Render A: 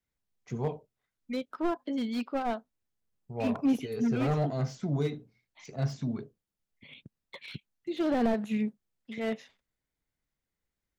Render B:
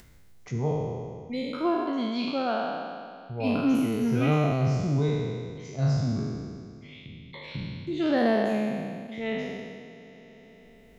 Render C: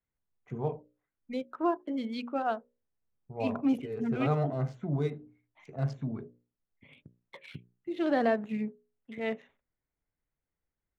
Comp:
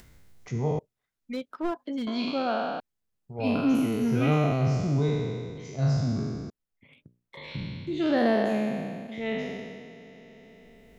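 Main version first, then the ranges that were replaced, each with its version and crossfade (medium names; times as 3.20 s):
B
0.79–2.07 s: from A
2.80–3.39 s: from A
6.50–7.37 s: from C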